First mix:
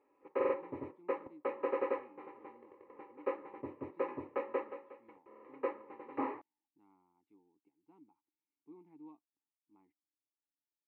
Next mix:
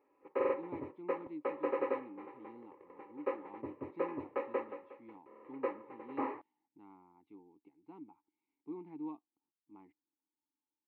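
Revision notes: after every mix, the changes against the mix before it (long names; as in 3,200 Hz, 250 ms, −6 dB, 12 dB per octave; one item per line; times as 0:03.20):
speech +11.0 dB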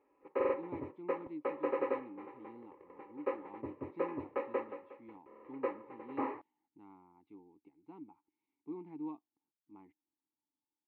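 master: add low-shelf EQ 76 Hz +9.5 dB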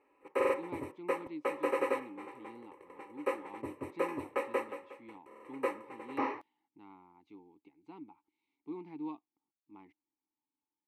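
master: remove head-to-tape spacing loss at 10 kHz 39 dB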